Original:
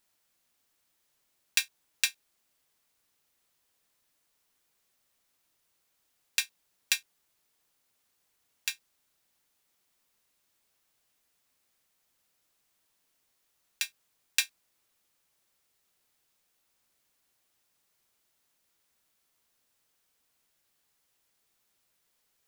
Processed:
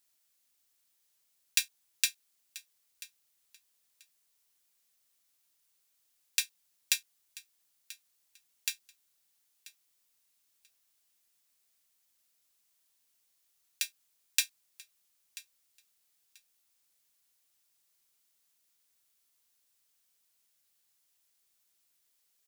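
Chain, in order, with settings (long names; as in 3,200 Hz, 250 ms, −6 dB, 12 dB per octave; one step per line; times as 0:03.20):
high-shelf EQ 2,600 Hz +11.5 dB
on a send: repeating echo 986 ms, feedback 19%, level −19 dB
on the sum: level −9.5 dB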